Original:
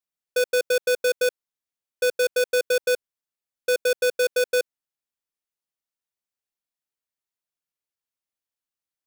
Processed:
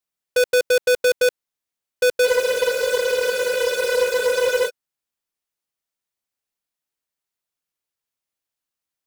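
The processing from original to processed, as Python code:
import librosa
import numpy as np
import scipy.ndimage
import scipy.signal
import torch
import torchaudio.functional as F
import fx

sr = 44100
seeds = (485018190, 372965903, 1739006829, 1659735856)

y = fx.spec_freeze(x, sr, seeds[0], at_s=2.28, hold_s=2.39)
y = fx.doppler_dist(y, sr, depth_ms=0.13)
y = y * librosa.db_to_amplitude(4.5)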